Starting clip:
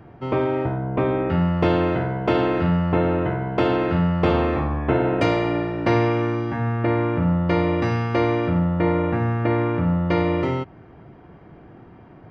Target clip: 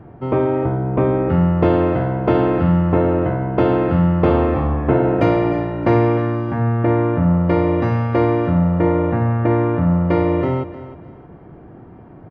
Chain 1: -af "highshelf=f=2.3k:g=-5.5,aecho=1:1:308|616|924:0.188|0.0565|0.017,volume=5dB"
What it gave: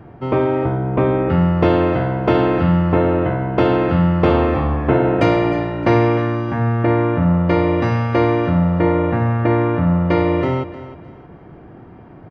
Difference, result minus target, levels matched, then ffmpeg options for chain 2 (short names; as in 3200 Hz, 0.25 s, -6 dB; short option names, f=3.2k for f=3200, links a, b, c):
4000 Hz band +6.5 dB
-af "highshelf=f=2.3k:g=-16,aecho=1:1:308|616|924:0.188|0.0565|0.017,volume=5dB"